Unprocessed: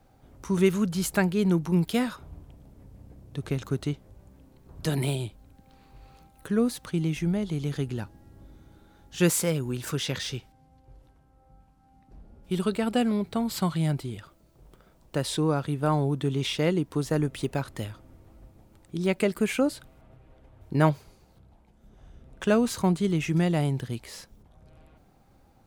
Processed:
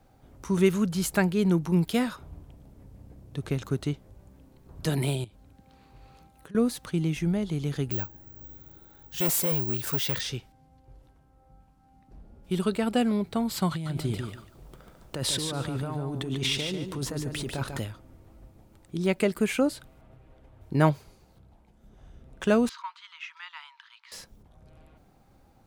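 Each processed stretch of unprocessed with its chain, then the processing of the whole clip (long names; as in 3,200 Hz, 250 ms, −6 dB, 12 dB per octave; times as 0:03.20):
0:05.24–0:06.55: high-pass filter 45 Hz + high-shelf EQ 11,000 Hz −5 dB + downward compressor 10 to 1, threshold −44 dBFS
0:07.91–0:10.21: parametric band 220 Hz −6.5 dB 0.33 octaves + hard clipping −25.5 dBFS + bad sample-rate conversion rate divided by 2×, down none, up zero stuff
0:13.71–0:17.79: compressor whose output falls as the input rises −31 dBFS + repeating echo 145 ms, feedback 21%, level −6 dB
0:22.69–0:24.12: Chebyshev high-pass with heavy ripple 920 Hz, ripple 3 dB + high-frequency loss of the air 230 metres
whole clip: no processing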